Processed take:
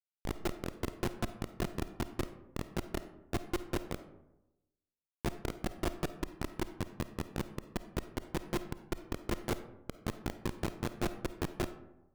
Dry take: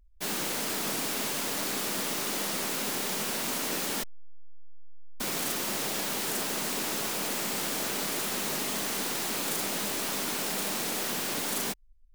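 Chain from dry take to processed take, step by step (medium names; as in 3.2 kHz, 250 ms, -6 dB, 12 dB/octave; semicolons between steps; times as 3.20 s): granulator 170 ms, grains 5.2 per s; robot voice 349 Hz; Schmitt trigger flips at -34.5 dBFS; algorithmic reverb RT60 0.97 s, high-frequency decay 0.4×, pre-delay 10 ms, DRR 11 dB; trim +10 dB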